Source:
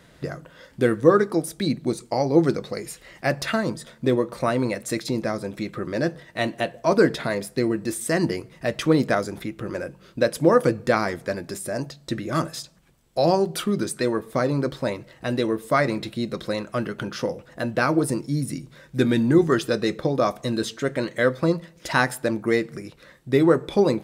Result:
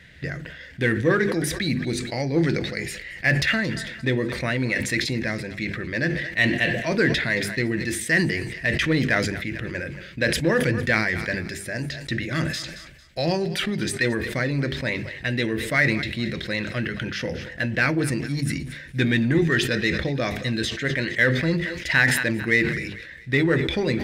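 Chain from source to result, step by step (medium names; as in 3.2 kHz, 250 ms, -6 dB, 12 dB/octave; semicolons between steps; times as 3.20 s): FFT filter 120 Hz 0 dB, 1.2 kHz -13 dB, 1.8 kHz +9 dB, 10 kHz -10 dB; in parallel at -9 dB: overload inside the chain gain 22.5 dB; on the sum: peaking EQ 70 Hz +13.5 dB 0.3 oct; hum notches 50/100/150/200/250/300/350/400 Hz; on a send: thinning echo 225 ms, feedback 45%, high-pass 500 Hz, level -18 dB; on the sum: decay stretcher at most 47 dB/s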